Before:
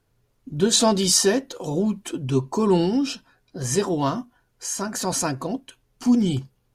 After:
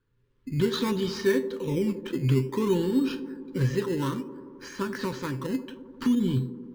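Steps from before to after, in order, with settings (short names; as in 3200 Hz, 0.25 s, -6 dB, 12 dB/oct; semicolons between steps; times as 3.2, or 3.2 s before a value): recorder AGC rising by 14 dB/s; LPF 4000 Hz 24 dB/oct; bell 1700 Hz +7.5 dB 0.24 oct; resonator 130 Hz, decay 0.32 s, harmonics all, mix 60%; in parallel at -4.5 dB: decimation with a swept rate 15×, swing 60% 0.58 Hz; on the sum: Butterworth band-stop 700 Hz, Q 1.8; on a send: band-limited delay 87 ms, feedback 78%, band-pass 430 Hz, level -12 dB; on the sum: gain -4 dB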